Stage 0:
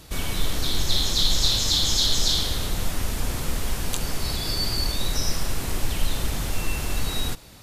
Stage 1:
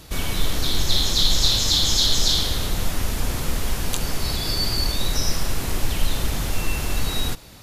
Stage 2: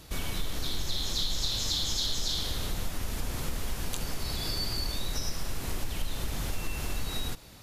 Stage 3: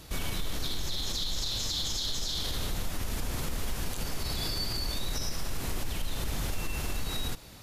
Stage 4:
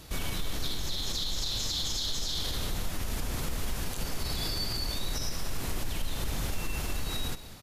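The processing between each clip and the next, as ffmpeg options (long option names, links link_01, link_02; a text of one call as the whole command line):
ffmpeg -i in.wav -af "equalizer=frequency=8400:width=5.2:gain=-3,volume=2.5dB" out.wav
ffmpeg -i in.wav -af "acompressor=threshold=-22dB:ratio=2.5,volume=-6dB" out.wav
ffmpeg -i in.wav -af "alimiter=limit=-24dB:level=0:latency=1:release=30,volume=1.5dB" out.wav
ffmpeg -i in.wav -af "aecho=1:1:192:0.178" out.wav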